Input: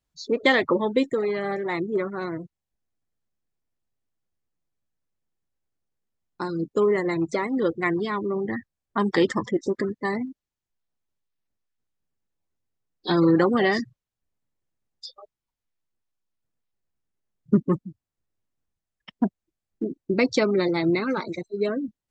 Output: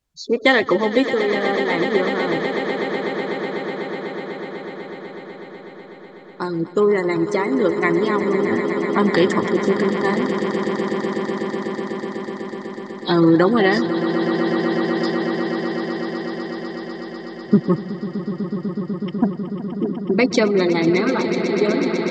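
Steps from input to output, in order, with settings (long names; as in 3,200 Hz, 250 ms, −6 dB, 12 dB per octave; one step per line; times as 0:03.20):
pitch vibrato 10 Hz 13 cents
echo that builds up and dies away 124 ms, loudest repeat 8, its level −12.5 dB
level +4.5 dB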